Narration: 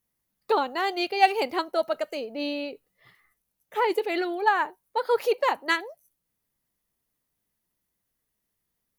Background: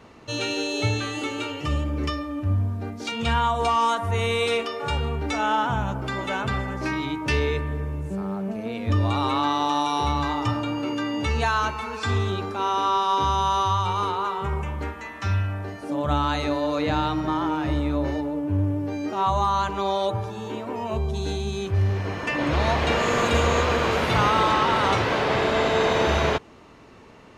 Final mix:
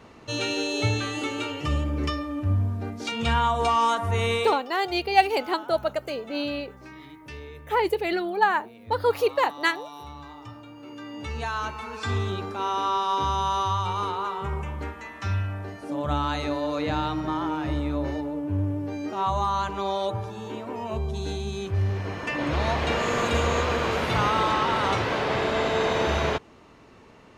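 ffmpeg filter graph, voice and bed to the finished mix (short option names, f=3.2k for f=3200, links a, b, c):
-filter_complex "[0:a]adelay=3950,volume=1dB[a];[1:a]volume=14dB,afade=t=out:st=4.34:d=0.23:silence=0.141254,afade=t=in:st=10.76:d=1.38:silence=0.188365[b];[a][b]amix=inputs=2:normalize=0"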